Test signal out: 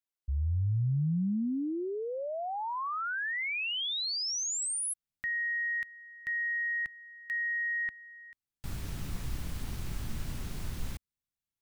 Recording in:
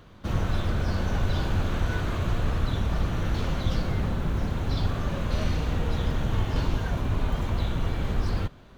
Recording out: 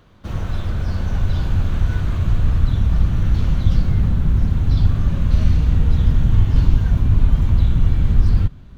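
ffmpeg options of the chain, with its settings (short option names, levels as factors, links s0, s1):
-af "asubboost=boost=5:cutoff=220,volume=0.891"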